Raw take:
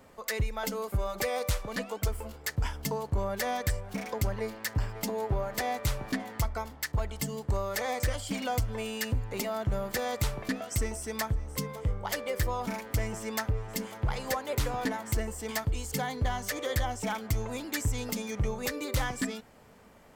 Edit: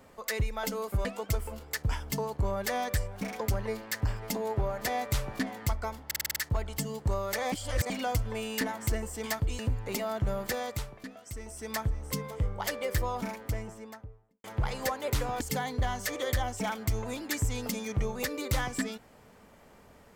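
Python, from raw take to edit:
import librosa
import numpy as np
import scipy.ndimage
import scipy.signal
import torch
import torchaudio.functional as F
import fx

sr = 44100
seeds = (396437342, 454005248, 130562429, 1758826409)

y = fx.studio_fade_out(x, sr, start_s=12.44, length_s=1.45)
y = fx.edit(y, sr, fx.cut(start_s=1.05, length_s=0.73),
    fx.stutter(start_s=6.79, slice_s=0.05, count=7),
    fx.reverse_span(start_s=7.95, length_s=0.38),
    fx.fade_down_up(start_s=9.91, length_s=1.4, db=-11.5, fade_s=0.49),
    fx.move(start_s=14.86, length_s=0.98, to_s=9.04), tone=tone)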